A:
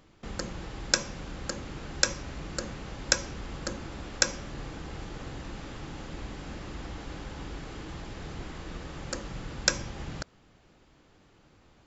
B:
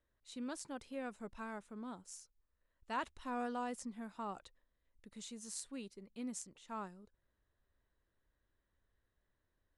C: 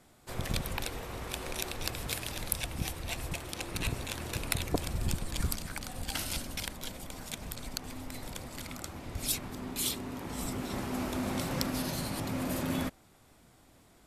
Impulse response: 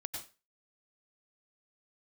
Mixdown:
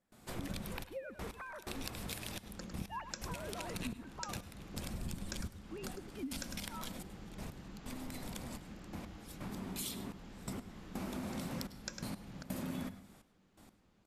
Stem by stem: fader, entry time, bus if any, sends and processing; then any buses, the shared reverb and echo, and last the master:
-13.5 dB, 2.20 s, no send, echo send -8 dB, dry
+1.5 dB, 0.00 s, no send, echo send -13.5 dB, sine-wave speech
-1.5 dB, 0.00 s, send -13 dB, echo send -21 dB, notches 50/100/150/200/250 Hz; step gate ".xxxxxx...x.." 126 bpm -24 dB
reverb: on, RT60 0.30 s, pre-delay 88 ms
echo: echo 0.103 s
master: bell 200 Hz +10.5 dB 0.49 oct; compressor 3:1, threshold -41 dBFS, peak gain reduction 13 dB

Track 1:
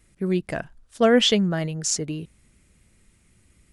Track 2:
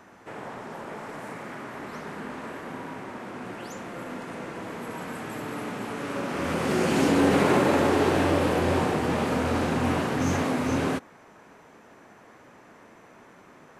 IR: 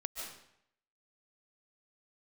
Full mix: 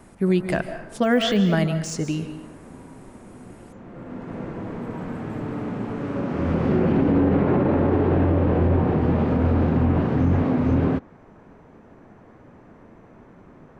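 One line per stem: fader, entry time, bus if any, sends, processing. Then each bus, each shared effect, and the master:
+1.5 dB, 0.00 s, send -4 dB, de-esser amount 85%; notch 460 Hz, Q 12
-1.5 dB, 0.00 s, no send, treble ducked by the level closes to 2800 Hz, closed at -19.5 dBFS; tilt -4 dB/oct; auto duck -10 dB, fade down 0.45 s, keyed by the first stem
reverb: on, RT60 0.75 s, pre-delay 0.105 s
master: limiter -11 dBFS, peak gain reduction 9.5 dB

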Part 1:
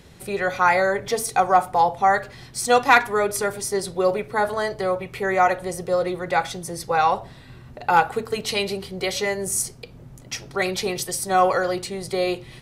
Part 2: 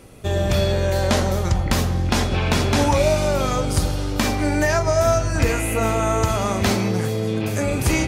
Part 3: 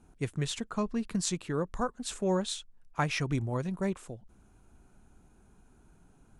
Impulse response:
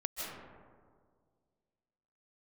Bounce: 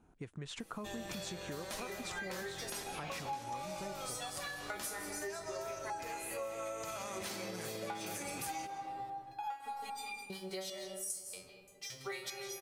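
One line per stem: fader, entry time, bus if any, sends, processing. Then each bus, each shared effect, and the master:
-7.5 dB, 1.50 s, no bus, send -5 dB, de-hum 92.78 Hz, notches 2; sample leveller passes 1; stepped resonator 2.5 Hz 91–1200 Hz
-13.0 dB, 0.60 s, bus A, send -15 dB, low shelf 130 Hz -10 dB; comb 6.1 ms, depth 38%; auto duck -12 dB, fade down 1.25 s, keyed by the third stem
-0.5 dB, 0.00 s, bus A, no send, LPF 1200 Hz 6 dB/oct; compressor 4:1, threshold -38 dBFS, peak gain reduction 11.5 dB
bus A: 0.0 dB, AGC gain up to 5.5 dB; limiter -26 dBFS, peak gain reduction 14 dB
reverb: on, RT60 1.9 s, pre-delay 0.115 s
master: tilt +2 dB/oct; compressor 6:1, threshold -39 dBFS, peak gain reduction 17 dB

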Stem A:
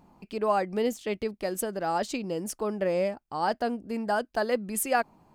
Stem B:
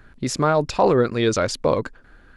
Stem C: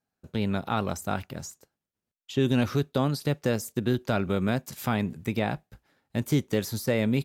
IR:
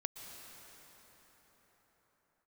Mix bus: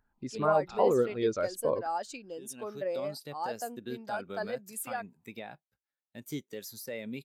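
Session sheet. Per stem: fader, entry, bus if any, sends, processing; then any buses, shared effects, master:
-2.0 dB, 0.00 s, bus A, no send, dry
-8.0 dB, 0.00 s, no bus, no send, dry
-3.5 dB, 0.00 s, bus A, no send, auto duck -15 dB, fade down 1.45 s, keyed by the second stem
bus A: 0.0 dB, tilt +2.5 dB/oct; limiter -20 dBFS, peak gain reduction 9 dB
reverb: off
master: low shelf 180 Hz -6 dB; spectral expander 1.5:1

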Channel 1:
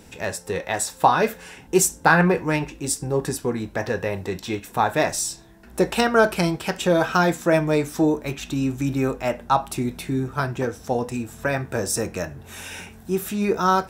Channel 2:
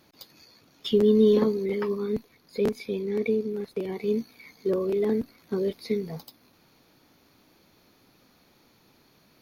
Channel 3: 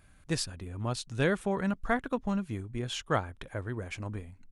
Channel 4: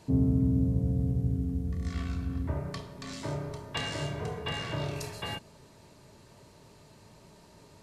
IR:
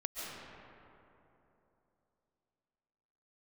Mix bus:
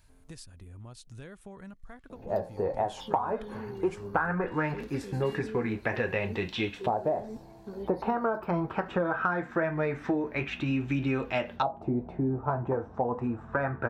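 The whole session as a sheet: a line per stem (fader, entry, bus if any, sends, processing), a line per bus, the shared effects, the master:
+1.0 dB, 2.10 s, bus A, no send, LFO low-pass saw up 0.21 Hz 630–3400 Hz
-8.5 dB, 2.15 s, bus A, no send, limiter -19 dBFS, peak gain reduction 8.5 dB
-8.5 dB, 0.00 s, bus B, no send, high shelf 9300 Hz +10 dB
-9.5 dB, 0.00 s, bus B, no send, HPF 1300 Hz 12 dB/oct; auto duck -14 dB, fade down 0.60 s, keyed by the third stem
bus A: 0.0 dB, flange 0.82 Hz, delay 7.7 ms, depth 2.5 ms, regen -61%; compressor 16:1, threshold -24 dBFS, peak gain reduction 18 dB
bus B: 0.0 dB, low shelf 86 Hz +11 dB; compressor 6:1, threshold -43 dBFS, peak gain reduction 14 dB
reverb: off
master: dry

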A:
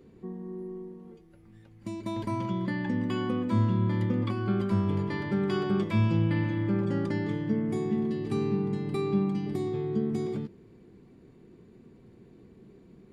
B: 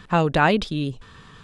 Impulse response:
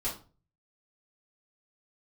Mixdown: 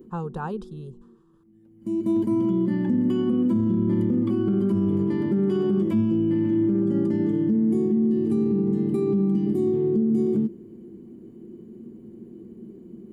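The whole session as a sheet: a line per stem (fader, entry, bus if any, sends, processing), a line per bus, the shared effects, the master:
-1.0 dB, 0.00 s, no send, small resonant body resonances 230/330/3000 Hz, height 17 dB, ringing for 60 ms; limiter -14 dBFS, peak gain reduction 10.5 dB; high shelf 3900 Hz +11.5 dB; auto duck -17 dB, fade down 0.25 s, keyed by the second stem
-8.5 dB, 0.00 s, no send, expander -39 dBFS; fixed phaser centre 420 Hz, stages 8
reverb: off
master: bell 4000 Hz -14 dB 2.3 oct

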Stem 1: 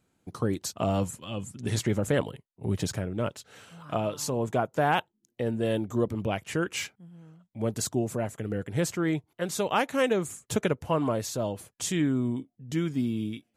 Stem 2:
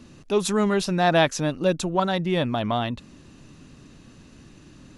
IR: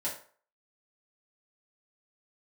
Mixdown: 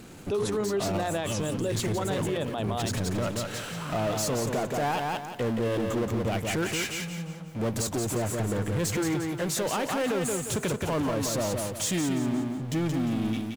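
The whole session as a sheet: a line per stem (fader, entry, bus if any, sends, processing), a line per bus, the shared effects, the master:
-5.5 dB, 0.00 s, no send, echo send -5 dB, power-law curve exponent 0.5
-3.0 dB, 0.00 s, no send, no echo send, bell 420 Hz +9.5 dB 0.5 oct; notches 60/120/180/240/300/360/420 Hz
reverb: off
echo: feedback echo 0.176 s, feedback 37%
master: limiter -21 dBFS, peak gain reduction 13.5 dB

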